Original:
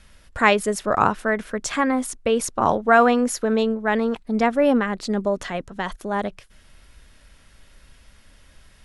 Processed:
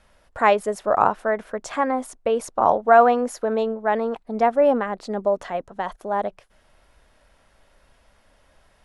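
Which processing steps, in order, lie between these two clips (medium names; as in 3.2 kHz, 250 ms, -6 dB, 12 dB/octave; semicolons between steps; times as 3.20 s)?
peaking EQ 710 Hz +13.5 dB 1.8 oct; trim -9.5 dB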